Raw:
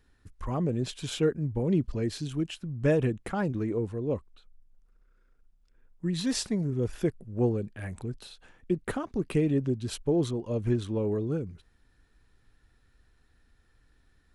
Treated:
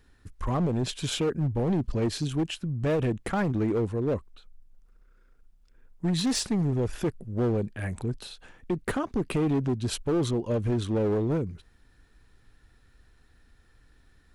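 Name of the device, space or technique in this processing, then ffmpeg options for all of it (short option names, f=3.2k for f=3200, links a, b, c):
limiter into clipper: -af "alimiter=limit=-21dB:level=0:latency=1:release=75,asoftclip=type=hard:threshold=-26.5dB,volume=5dB"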